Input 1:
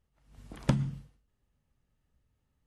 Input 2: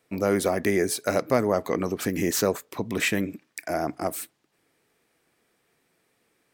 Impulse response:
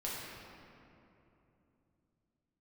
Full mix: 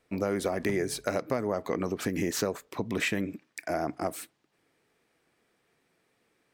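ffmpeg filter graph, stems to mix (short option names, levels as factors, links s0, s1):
-filter_complex "[0:a]volume=0.447[s0];[1:a]highshelf=f=8700:g=-9.5,acompressor=threshold=0.0708:ratio=6,volume=0.841,asplit=2[s1][s2];[s2]apad=whole_len=117731[s3];[s0][s3]sidechaincompress=threshold=0.0251:ratio=8:attack=16:release=169[s4];[s4][s1]amix=inputs=2:normalize=0"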